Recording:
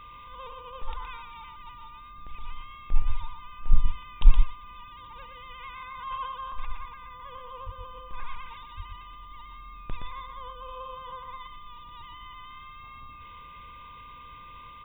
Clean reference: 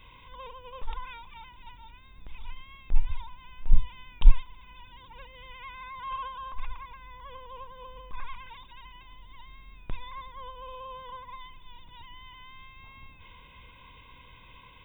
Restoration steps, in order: notch 1200 Hz, Q 30; 2.97–3.09 HPF 140 Hz 24 dB/oct; 7.65–7.77 HPF 140 Hz 24 dB/oct; 8.76–8.88 HPF 140 Hz 24 dB/oct; inverse comb 0.119 s -6 dB

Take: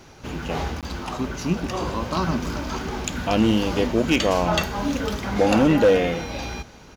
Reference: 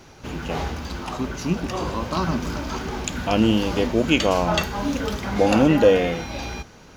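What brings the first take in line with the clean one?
clip repair -10.5 dBFS; interpolate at 0.81, 17 ms; inverse comb 0.329 s -22.5 dB

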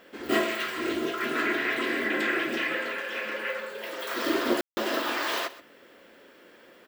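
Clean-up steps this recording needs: room tone fill 4.61–4.77; inverse comb 0.128 s -17.5 dB

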